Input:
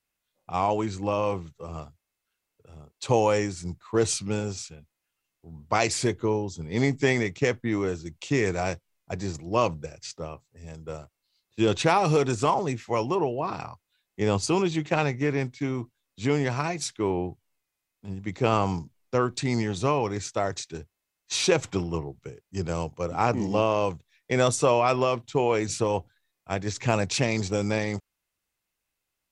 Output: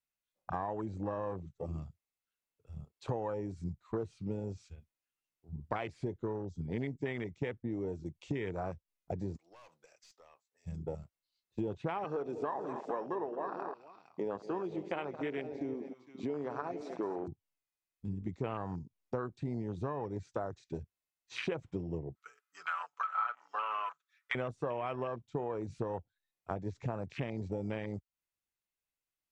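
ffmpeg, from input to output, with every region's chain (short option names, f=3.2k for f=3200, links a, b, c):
-filter_complex "[0:a]asettb=1/sr,asplit=3[a][b][c];[a]atrim=end=9.364[d];[b]atrim=start=9.36:end=10.67,asetpts=PTS-STARTPTS,afade=t=in:d=0.004:c=qsin,afade=t=out:st=1.306:d=0.004:c=qsin,highpass=700,aeval=exprs='(tanh(28.2*val(0)+0.35)-tanh(0.35))/28.2':c=same,acompressor=threshold=-42dB:ratio=5:attack=3.2:release=140:knee=1:detection=peak[e];[c]atrim=start=10.666[f];[d][e]acrossfade=d=0.004:c1=hsin:c2=qsin[g];[g][f]acrossfade=d=0.004:c1=qsin:c2=hsin,asettb=1/sr,asplit=3[h][i][j];[h]atrim=end=12.044[k];[i]atrim=start=12.04:end=17.28,asetpts=PTS-STARTPTS,afade=t=in:d=0.004:c=qsin,afade=t=out:st=5.236:d=0.004:c=qsin,highpass=300,lowpass=5.9k,aecho=1:1:68|211|274|457:0.141|0.188|0.126|0.224,atrim=end_sample=231084[l];[j]atrim=start=17.276[m];[k][l]acrossfade=d=0.004:c1=hsin:c2=qsin[n];[n][m]acrossfade=d=0.004:c1=qsin:c2=hsin,asettb=1/sr,asplit=3[o][p][q];[o]atrim=end=22.154[r];[p]atrim=start=22.15:end=24.35,asetpts=PTS-STARTPTS,afade=t=in:d=0.004:c=qsin,afade=t=out:st=2.196:d=0.004:c=qsin,highpass=f=1.3k:t=q:w=9.2,aecho=1:1:6.9:0.76,atrim=end_sample=97020[s];[q]atrim=start=24.346[t];[r][s]acrossfade=d=0.004:c1=hsin:c2=qsin[u];[u][t]acrossfade=d=0.004:c1=qsin:c2=hsin,acrossover=split=3600[v][w];[w]acompressor=threshold=-46dB:ratio=4:attack=1:release=60[x];[v][x]amix=inputs=2:normalize=0,afwtdn=0.0316,acompressor=threshold=-39dB:ratio=5,volume=3.5dB"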